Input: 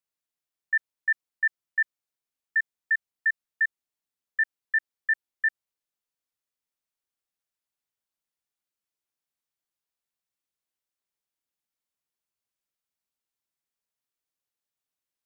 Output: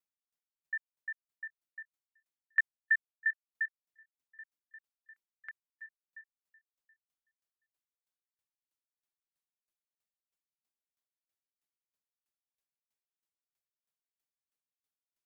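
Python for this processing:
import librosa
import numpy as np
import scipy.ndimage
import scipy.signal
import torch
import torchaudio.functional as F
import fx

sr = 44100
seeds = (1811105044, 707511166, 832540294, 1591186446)

y = fx.echo_feedback(x, sr, ms=726, feedback_pct=37, wet_db=-20.5)
y = fx.tremolo_decay(y, sr, direction='decaying', hz=3.1, depth_db=38)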